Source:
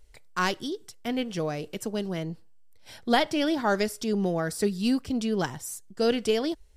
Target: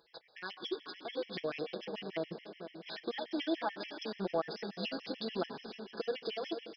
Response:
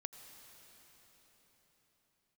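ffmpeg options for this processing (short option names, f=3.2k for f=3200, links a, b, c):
-filter_complex "[0:a]highpass=400,acompressor=threshold=-38dB:ratio=4,alimiter=level_in=6dB:limit=-24dB:level=0:latency=1:release=296,volume=-6dB,acrusher=bits=4:mode=log:mix=0:aa=0.000001,aecho=1:1:487:0.266,asplit=2[a][b];[1:a]atrim=start_sample=2205,adelay=6[c];[b][c]afir=irnorm=-1:irlink=0,volume=2.5dB[d];[a][d]amix=inputs=2:normalize=0,aresample=11025,aresample=44100,afftfilt=real='re*gt(sin(2*PI*6.9*pts/sr)*(1-2*mod(floor(b*sr/1024/1700),2)),0)':imag='im*gt(sin(2*PI*6.9*pts/sr)*(1-2*mod(floor(b*sr/1024/1700),2)),0)':win_size=1024:overlap=0.75,volume=5dB"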